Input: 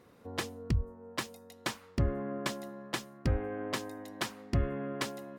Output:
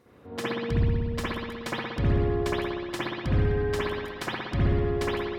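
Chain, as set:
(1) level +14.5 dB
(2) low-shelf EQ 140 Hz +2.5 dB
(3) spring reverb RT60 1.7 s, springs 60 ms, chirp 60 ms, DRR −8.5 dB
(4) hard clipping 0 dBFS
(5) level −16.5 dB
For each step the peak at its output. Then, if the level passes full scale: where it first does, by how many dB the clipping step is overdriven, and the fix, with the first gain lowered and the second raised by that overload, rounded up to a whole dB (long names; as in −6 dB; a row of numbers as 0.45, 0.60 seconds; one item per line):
−4.0, −2.5, +4.5, 0.0, −16.5 dBFS
step 3, 4.5 dB
step 1 +9.5 dB, step 5 −11.5 dB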